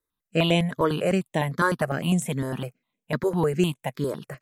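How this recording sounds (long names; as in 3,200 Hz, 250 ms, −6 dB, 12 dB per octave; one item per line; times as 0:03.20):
notches that jump at a steady rate 9.9 Hz 740–4,700 Hz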